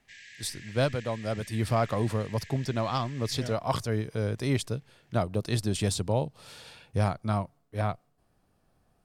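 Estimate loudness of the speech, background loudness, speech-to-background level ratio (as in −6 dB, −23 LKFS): −30.5 LKFS, −47.5 LKFS, 17.0 dB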